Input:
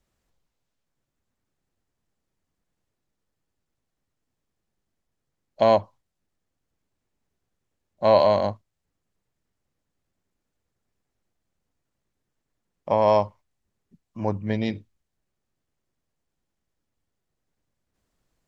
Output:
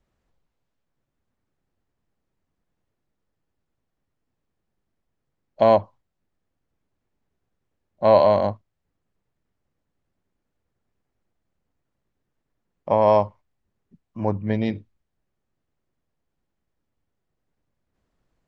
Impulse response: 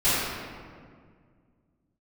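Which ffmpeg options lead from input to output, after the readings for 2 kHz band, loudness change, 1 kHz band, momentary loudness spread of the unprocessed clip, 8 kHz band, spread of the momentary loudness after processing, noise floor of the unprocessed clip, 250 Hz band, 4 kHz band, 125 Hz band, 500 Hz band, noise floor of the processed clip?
0.0 dB, +2.0 dB, +2.0 dB, 12 LU, n/a, 12 LU, -81 dBFS, +2.5 dB, -3.0 dB, +2.5 dB, +2.0 dB, -79 dBFS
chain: -af "lowpass=f=2.2k:p=1,volume=2.5dB"

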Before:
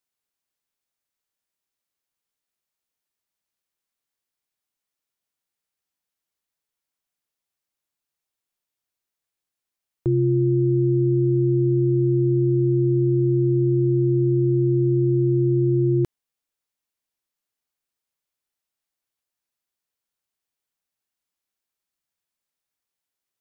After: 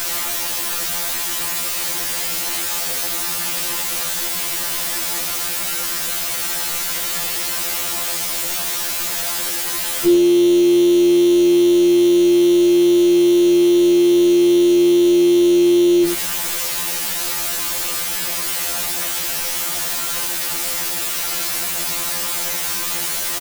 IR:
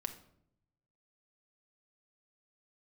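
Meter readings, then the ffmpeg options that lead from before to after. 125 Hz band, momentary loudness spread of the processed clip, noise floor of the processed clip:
-18.5 dB, 6 LU, -23 dBFS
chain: -af "aeval=exprs='val(0)+0.5*0.0355*sgn(val(0))':c=same,equalizer=f=87:w=1.2:g=-11.5,bandreject=f=60:t=h:w=6,bandreject=f=120:t=h:w=6,bandreject=f=180:t=h:w=6,aecho=1:1:5.9:0.85,alimiter=limit=-21dB:level=0:latency=1,acontrast=78,acrusher=bits=4:mix=0:aa=0.000001,aecho=1:1:87:0.335,afftfilt=real='re*2*eq(mod(b,4),0)':imag='im*2*eq(mod(b,4),0)':win_size=2048:overlap=0.75,volume=5.5dB"

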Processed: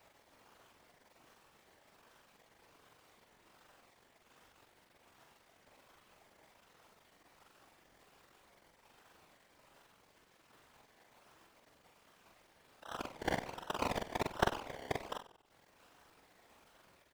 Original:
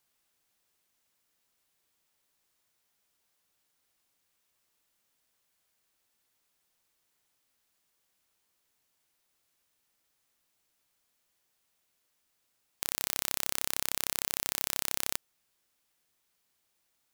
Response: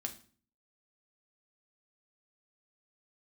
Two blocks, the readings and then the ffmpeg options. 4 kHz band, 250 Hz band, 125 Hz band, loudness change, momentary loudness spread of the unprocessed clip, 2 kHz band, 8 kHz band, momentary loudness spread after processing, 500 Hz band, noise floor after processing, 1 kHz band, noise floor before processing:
-9.5 dB, +6.5 dB, +5.5 dB, -8.0 dB, 4 LU, -2.0 dB, -20.0 dB, 12 LU, +7.5 dB, -69 dBFS, +5.5 dB, -77 dBFS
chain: -filter_complex "[0:a]highpass=f=700:w=0.5412,highpass=f=700:w=1.3066,equalizer=f=10k:t=o:w=0.36:g=-13.5,acompressor=threshold=-51dB:ratio=2,acrusher=samples=27:mix=1:aa=0.000001:lfo=1:lforange=16.2:lforate=1.3,asplit=2[a][b];[b]highpass=f=720:p=1,volume=9dB,asoftclip=type=tanh:threshold=-16.5dB[c];[a][c]amix=inputs=2:normalize=0,lowpass=f=3.1k:p=1,volume=-6dB,acrusher=bits=11:mix=0:aa=0.000001,afftfilt=real='hypot(re,im)*cos(2*PI*random(0))':imag='hypot(re,im)*sin(2*PI*random(1))':win_size=512:overlap=0.75,asplit=2[d][e];[e]adelay=44,volume=-3.5dB[f];[d][f]amix=inputs=2:normalize=0,asplit=5[g][h][i][j][k];[h]adelay=94,afreqshift=-59,volume=-15.5dB[l];[i]adelay=188,afreqshift=-118,volume=-22.8dB[m];[j]adelay=282,afreqshift=-177,volume=-30.2dB[n];[k]adelay=376,afreqshift=-236,volume=-37.5dB[o];[g][l][m][n][o]amix=inputs=5:normalize=0,volume=16dB"

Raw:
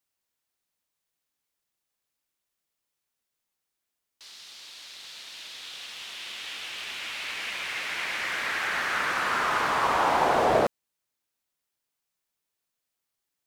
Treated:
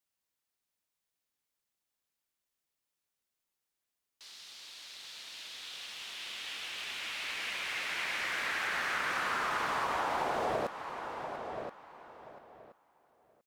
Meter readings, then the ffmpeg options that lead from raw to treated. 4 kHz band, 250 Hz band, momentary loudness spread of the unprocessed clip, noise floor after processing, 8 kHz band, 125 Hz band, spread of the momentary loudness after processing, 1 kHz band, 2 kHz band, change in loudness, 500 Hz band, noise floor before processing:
-4.5 dB, -9.0 dB, 19 LU, under -85 dBFS, -5.0 dB, -9.0 dB, 19 LU, -8.0 dB, -5.5 dB, -8.0 dB, -9.5 dB, -84 dBFS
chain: -filter_complex "[0:a]asplit=2[a][b];[b]adelay=1026,lowpass=f=3.6k:p=1,volume=-14.5dB,asplit=2[c][d];[d]adelay=1026,lowpass=f=3.6k:p=1,volume=0.19[e];[c][e]amix=inputs=2:normalize=0[f];[a][f]amix=inputs=2:normalize=0,acompressor=threshold=-25dB:ratio=10,asplit=2[g][h];[h]aecho=0:1:690:0.224[i];[g][i]amix=inputs=2:normalize=0,volume=-4dB"

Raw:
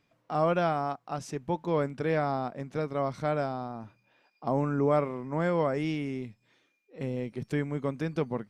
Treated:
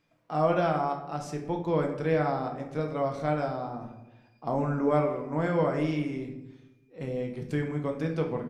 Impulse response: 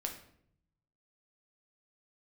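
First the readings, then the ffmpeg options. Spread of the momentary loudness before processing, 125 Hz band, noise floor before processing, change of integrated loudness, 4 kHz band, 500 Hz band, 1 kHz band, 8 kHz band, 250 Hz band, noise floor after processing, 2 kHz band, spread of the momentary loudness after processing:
10 LU, +1.5 dB, -73 dBFS, +1.0 dB, -0.5 dB, +1.0 dB, +1.0 dB, n/a, +1.5 dB, -63 dBFS, +0.5 dB, 11 LU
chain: -filter_complex "[0:a]asplit=2[a][b];[b]adelay=168,lowpass=f=890:p=1,volume=-13dB,asplit=2[c][d];[d]adelay=168,lowpass=f=890:p=1,volume=0.45,asplit=2[e][f];[f]adelay=168,lowpass=f=890:p=1,volume=0.45,asplit=2[g][h];[h]adelay=168,lowpass=f=890:p=1,volume=0.45[i];[a][c][e][g][i]amix=inputs=5:normalize=0[j];[1:a]atrim=start_sample=2205[k];[j][k]afir=irnorm=-1:irlink=0"

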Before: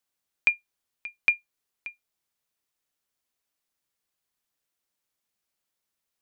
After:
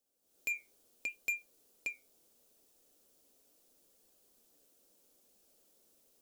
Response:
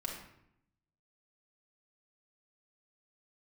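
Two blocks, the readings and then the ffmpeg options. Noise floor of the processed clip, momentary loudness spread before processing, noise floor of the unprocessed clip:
-74 dBFS, 17 LU, -84 dBFS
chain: -af "equalizer=f=125:t=o:w=1:g=-8,equalizer=f=250:t=o:w=1:g=6,equalizer=f=500:t=o:w=1:g=9,equalizer=f=1k:t=o:w=1:g=-7,equalizer=f=2k:t=o:w=1:g=-11,equalizer=f=4k:t=o:w=1:g=-3,alimiter=level_in=1.5dB:limit=-24dB:level=0:latency=1:release=83,volume=-1.5dB,dynaudnorm=f=200:g=3:m=15dB,asoftclip=type=tanh:threshold=-31.5dB,flanger=delay=1.1:depth=6.4:regen=80:speed=0.74:shape=sinusoidal,volume=4.5dB"

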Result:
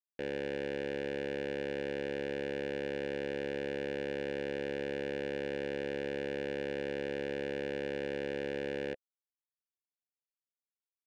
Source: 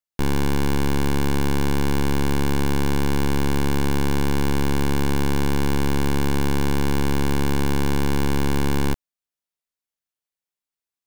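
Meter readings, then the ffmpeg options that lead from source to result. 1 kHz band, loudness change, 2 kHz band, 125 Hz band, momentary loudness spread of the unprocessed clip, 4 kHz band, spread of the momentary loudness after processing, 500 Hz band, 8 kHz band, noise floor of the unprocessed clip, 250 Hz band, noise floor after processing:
-21.0 dB, -14.0 dB, -10.0 dB, -25.5 dB, 0 LU, -14.5 dB, 0 LU, -6.0 dB, under -25 dB, under -85 dBFS, -17.5 dB, under -85 dBFS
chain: -filter_complex "[0:a]asplit=3[a][b][c];[a]bandpass=f=530:t=q:w=8,volume=0dB[d];[b]bandpass=f=1.84k:t=q:w=8,volume=-6dB[e];[c]bandpass=f=2.48k:t=q:w=8,volume=-9dB[f];[d][e][f]amix=inputs=3:normalize=0,anlmdn=0.0398,volume=2.5dB"

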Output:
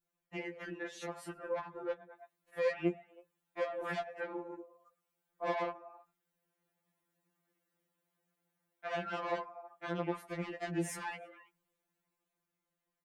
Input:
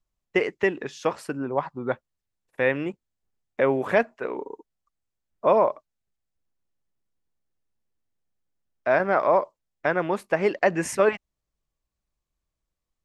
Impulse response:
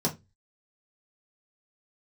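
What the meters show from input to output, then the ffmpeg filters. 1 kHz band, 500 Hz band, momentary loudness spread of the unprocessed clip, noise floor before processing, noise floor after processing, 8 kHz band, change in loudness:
-14.0 dB, -15.5 dB, 13 LU, -85 dBFS, under -85 dBFS, n/a, -14.5 dB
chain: -filter_complex "[0:a]dynaudnorm=f=220:g=13:m=9dB,equalizer=f=5.4k:t=o:w=1.5:g=-10,asplit=4[a][b][c][d];[b]adelay=108,afreqshift=59,volume=-23dB[e];[c]adelay=216,afreqshift=118,volume=-31dB[f];[d]adelay=324,afreqshift=177,volume=-38.9dB[g];[a][e][f][g]amix=inputs=4:normalize=0,asplit=2[h][i];[1:a]atrim=start_sample=2205[j];[i][j]afir=irnorm=-1:irlink=0,volume=-27.5dB[k];[h][k]amix=inputs=2:normalize=0,aeval=exprs='(tanh(5.01*val(0)+0.55)-tanh(0.55))/5.01':c=same,acompressor=threshold=-39dB:ratio=2,highpass=f=340:p=1,alimiter=level_in=7dB:limit=-24dB:level=0:latency=1:release=255,volume=-7dB,adynamicequalizer=threshold=0.00224:dfrequency=950:dqfactor=0.89:tfrequency=950:tqfactor=0.89:attack=5:release=100:ratio=0.375:range=2.5:mode=cutabove:tftype=bell,afftfilt=real='re*2.83*eq(mod(b,8),0)':imag='im*2.83*eq(mod(b,8),0)':win_size=2048:overlap=0.75,volume=8dB"

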